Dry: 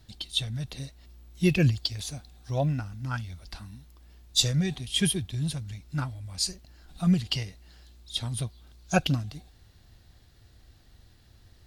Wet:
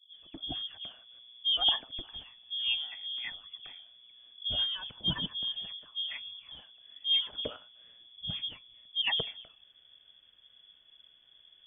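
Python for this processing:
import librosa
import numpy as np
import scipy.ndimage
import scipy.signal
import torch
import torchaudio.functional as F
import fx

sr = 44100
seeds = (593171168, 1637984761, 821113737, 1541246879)

y = fx.dispersion(x, sr, late='highs', ms=138.0, hz=320.0)
y = fx.freq_invert(y, sr, carrier_hz=3400)
y = F.gain(torch.from_numpy(y), -6.0).numpy()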